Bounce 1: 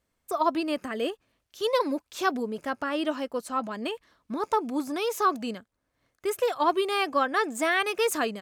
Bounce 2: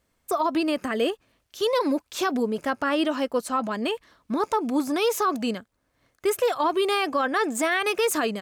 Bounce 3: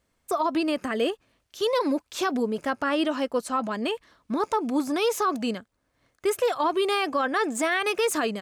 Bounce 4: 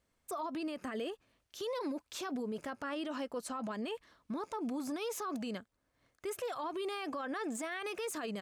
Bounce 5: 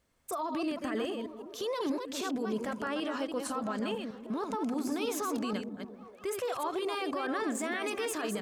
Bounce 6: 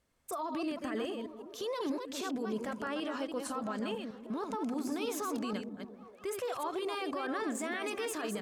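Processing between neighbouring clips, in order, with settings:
peak limiter -21 dBFS, peak gain reduction 9 dB; trim +6 dB
peaking EQ 15 kHz -13.5 dB 0.23 oct; trim -1 dB
peak limiter -25.5 dBFS, peak gain reduction 9.5 dB; trim -6 dB
chunks repeated in reverse 158 ms, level -5.5 dB; on a send: repeats whose band climbs or falls 195 ms, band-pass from 190 Hz, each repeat 0.7 oct, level -8 dB; on the sum: trim +4 dB
trim -2.5 dB; Vorbis 128 kbps 44.1 kHz

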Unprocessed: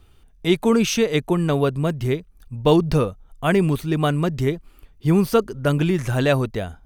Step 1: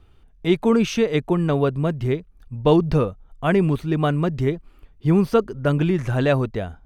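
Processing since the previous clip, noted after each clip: low-pass 2.5 kHz 6 dB/octave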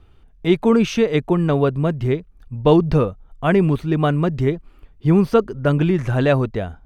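treble shelf 4.9 kHz -4.5 dB; trim +2.5 dB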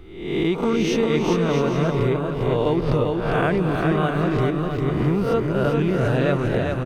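reverse spectral sustain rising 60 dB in 0.70 s; compression 4:1, threshold -23 dBFS, peak gain reduction 13.5 dB; on a send: bouncing-ball echo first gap 400 ms, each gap 0.65×, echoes 5; on the sum: trim +3 dB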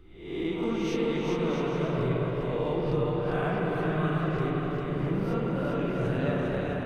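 flange 0.49 Hz, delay 0.6 ms, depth 6.3 ms, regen -43%; spring tank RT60 3.3 s, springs 54/58 ms, chirp 35 ms, DRR -2 dB; trim -8 dB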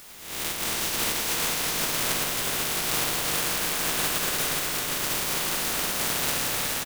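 spectral contrast reduction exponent 0.11; added noise white -48 dBFS; delay 366 ms -4.5 dB

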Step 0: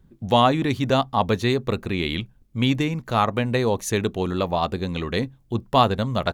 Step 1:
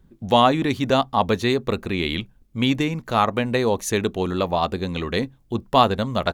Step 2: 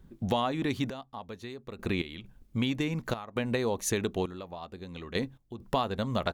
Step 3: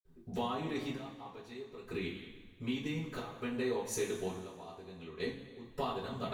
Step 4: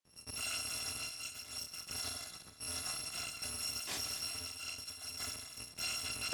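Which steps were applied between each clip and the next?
peaking EQ 120 Hz -5 dB 0.74 oct; trim +1.5 dB
compression 6:1, threshold -26 dBFS, peak gain reduction 15 dB; trance gate "xxxx....x.xxxx." 67 bpm -12 dB
reverberation, pre-delay 46 ms; trim +11 dB
bit-reversed sample order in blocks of 256 samples; valve stage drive 45 dB, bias 0.75; band-pass 100–7700 Hz; trim +13 dB

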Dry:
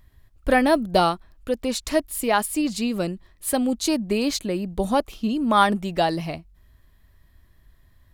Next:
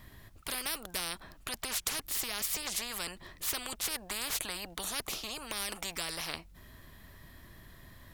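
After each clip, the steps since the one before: spectrum-flattening compressor 10:1; trim -8 dB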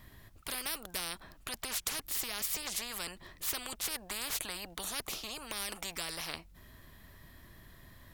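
peaking EQ 16 kHz +3.5 dB 0.28 oct; trim -2 dB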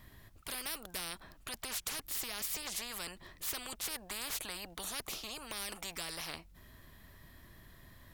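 saturation -27 dBFS, distortion -17 dB; trim -1.5 dB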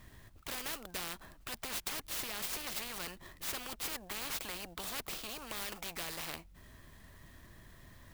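sampling jitter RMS 0.036 ms; trim +1 dB

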